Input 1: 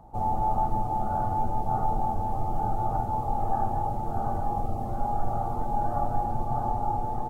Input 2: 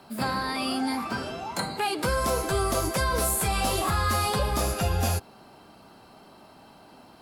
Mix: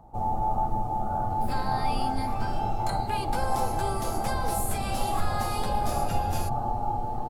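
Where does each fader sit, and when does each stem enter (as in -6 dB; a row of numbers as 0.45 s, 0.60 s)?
-1.0 dB, -7.5 dB; 0.00 s, 1.30 s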